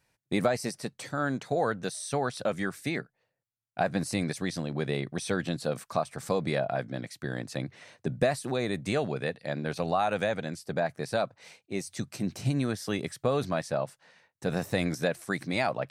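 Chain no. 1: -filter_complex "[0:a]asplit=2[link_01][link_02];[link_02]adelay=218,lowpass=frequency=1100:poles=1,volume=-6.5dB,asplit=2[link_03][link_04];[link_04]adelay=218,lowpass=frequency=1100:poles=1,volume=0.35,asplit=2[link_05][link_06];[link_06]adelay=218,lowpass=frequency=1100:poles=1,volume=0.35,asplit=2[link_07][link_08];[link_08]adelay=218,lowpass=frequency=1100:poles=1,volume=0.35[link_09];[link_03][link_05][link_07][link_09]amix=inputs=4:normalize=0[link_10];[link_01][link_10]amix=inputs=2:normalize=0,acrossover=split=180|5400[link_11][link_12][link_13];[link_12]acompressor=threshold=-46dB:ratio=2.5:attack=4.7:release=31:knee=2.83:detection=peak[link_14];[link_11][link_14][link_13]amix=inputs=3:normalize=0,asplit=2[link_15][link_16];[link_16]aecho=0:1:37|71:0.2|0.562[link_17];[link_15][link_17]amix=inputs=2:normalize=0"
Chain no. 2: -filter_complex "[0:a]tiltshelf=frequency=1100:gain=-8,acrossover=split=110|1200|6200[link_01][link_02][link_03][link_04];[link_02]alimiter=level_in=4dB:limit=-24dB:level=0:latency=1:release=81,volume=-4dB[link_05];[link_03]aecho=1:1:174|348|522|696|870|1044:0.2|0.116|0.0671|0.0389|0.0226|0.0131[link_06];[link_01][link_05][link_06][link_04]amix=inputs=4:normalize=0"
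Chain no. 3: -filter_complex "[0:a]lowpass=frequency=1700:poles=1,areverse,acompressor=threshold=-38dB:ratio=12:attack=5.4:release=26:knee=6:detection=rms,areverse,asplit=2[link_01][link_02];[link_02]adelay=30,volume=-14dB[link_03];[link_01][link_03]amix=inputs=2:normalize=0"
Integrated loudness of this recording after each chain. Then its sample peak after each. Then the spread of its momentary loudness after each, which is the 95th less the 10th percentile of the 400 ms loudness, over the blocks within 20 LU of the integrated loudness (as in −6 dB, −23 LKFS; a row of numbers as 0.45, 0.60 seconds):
−36.5, −33.0, −43.0 LKFS; −19.0, −12.0, −28.5 dBFS; 6, 8, 5 LU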